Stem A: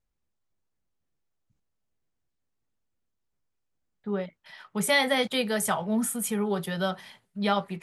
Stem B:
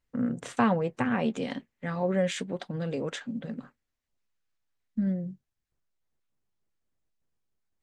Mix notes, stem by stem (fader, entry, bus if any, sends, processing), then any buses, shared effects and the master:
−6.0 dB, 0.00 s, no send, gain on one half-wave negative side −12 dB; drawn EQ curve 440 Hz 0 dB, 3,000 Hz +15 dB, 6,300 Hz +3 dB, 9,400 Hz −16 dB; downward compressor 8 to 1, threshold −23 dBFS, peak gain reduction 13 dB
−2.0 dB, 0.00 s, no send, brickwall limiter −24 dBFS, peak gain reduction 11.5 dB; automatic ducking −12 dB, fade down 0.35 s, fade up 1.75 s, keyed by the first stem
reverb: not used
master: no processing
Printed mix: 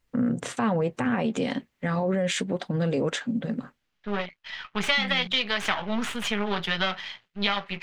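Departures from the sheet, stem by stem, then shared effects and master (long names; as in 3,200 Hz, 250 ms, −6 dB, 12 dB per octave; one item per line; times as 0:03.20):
stem A −6.0 dB → +2.5 dB
stem B −2.0 dB → +7.0 dB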